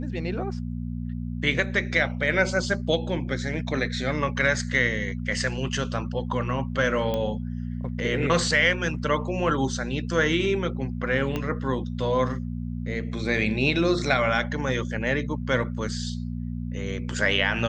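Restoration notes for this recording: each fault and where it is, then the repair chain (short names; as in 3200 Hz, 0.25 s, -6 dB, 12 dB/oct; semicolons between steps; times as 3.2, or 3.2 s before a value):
hum 60 Hz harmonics 4 -31 dBFS
7.14 pop -15 dBFS
11.36 pop -15 dBFS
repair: de-click; de-hum 60 Hz, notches 4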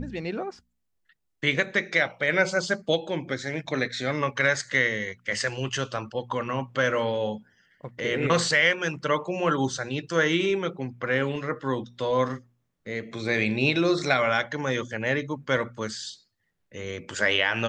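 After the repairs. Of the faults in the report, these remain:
11.36 pop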